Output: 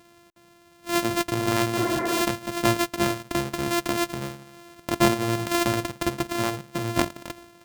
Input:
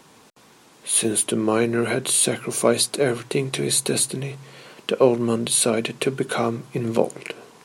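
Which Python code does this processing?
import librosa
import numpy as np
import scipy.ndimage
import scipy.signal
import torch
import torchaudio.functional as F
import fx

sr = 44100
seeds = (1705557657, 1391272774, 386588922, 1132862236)

y = np.r_[np.sort(x[:len(x) // 128 * 128].reshape(-1, 128), axis=1).ravel(), x[len(x) // 128 * 128:]]
y = fx.spec_repair(y, sr, seeds[0], start_s=1.81, length_s=0.38, low_hz=220.0, high_hz=2400.0, source='before')
y = y * librosa.db_to_amplitude(-3.5)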